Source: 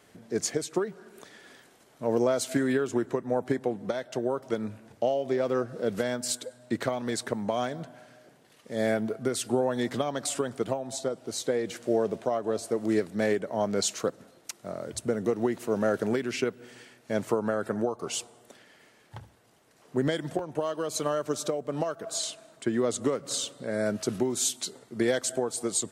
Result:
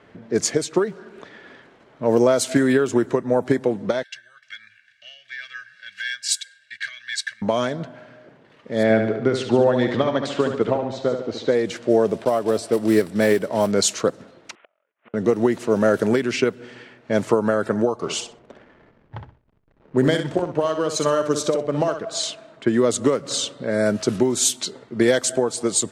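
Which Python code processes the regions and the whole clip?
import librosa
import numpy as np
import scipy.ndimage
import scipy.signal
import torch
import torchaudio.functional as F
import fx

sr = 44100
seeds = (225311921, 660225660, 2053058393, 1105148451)

y = fx.chain(x, sr, fx.ellip_highpass(hz=1600.0, order=4, stop_db=40),
    fx.comb(ms=1.8, depth=0.86), at=(4.03, 7.42))
y = fx.chain(y, sr, fx.lowpass(hz=3400.0, slope=12),
    fx.echo_feedback(ms=72, feedback_pct=53, wet_db=-7), at=(8.83, 11.55))
y = fx.chain(y, sr, fx.block_float(bits=5),
    fx.notch(hz=6600.0, q=7.5), at=(12.18, 13.73))
y = fx.chain(y, sr, fx.cvsd(bps=16000),
    fx.highpass(hz=980.0, slope=12),
    fx.gate_flip(shuts_db=-42.0, range_db=-37), at=(14.55, 15.14))
y = fx.chain(y, sr, fx.backlash(play_db=-49.5),
    fx.echo_feedback(ms=63, feedback_pct=20, wet_db=-8.0), at=(18.02, 22.03))
y = fx.notch(y, sr, hz=740.0, q=15.0)
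y = fx.env_lowpass(y, sr, base_hz=2400.0, full_db=-22.5)
y = F.gain(torch.from_numpy(y), 8.5).numpy()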